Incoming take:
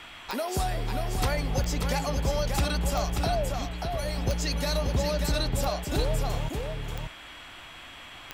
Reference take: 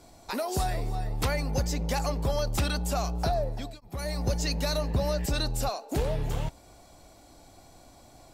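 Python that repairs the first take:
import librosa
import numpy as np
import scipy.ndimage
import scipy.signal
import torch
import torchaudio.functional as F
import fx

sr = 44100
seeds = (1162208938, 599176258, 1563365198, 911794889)

y = fx.fix_declick_ar(x, sr, threshold=10.0)
y = fx.notch(y, sr, hz=3300.0, q=30.0)
y = fx.noise_reduce(y, sr, print_start_s=7.47, print_end_s=7.97, reduce_db=9.0)
y = fx.fix_echo_inverse(y, sr, delay_ms=585, level_db=-5.0)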